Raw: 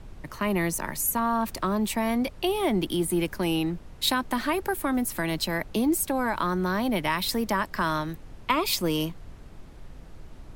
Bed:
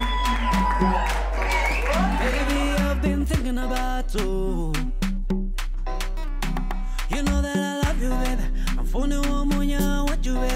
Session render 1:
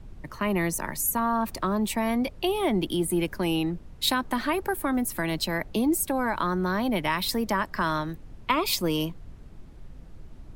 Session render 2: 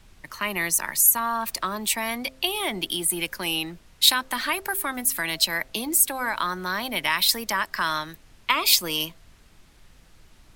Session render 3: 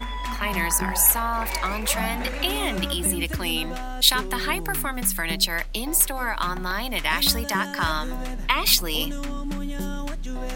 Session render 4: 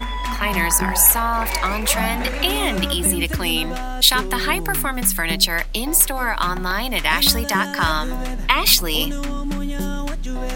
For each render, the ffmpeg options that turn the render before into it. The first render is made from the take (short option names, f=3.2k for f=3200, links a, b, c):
-af "afftdn=nr=6:nf=-46"
-af "tiltshelf=f=970:g=-10,bandreject=f=131:t=h:w=4,bandreject=f=262:t=h:w=4,bandreject=f=393:t=h:w=4,bandreject=f=524:t=h:w=4,bandreject=f=655:t=h:w=4"
-filter_complex "[1:a]volume=-7.5dB[a];[0:a][a]amix=inputs=2:normalize=0"
-af "volume=5dB,alimiter=limit=-1dB:level=0:latency=1"